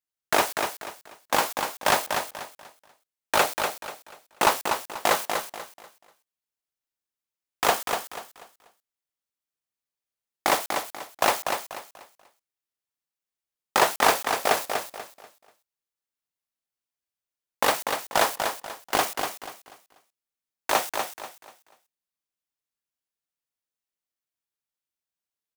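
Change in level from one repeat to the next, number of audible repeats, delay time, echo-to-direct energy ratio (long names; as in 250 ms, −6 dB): −10.5 dB, 3, 243 ms, −5.5 dB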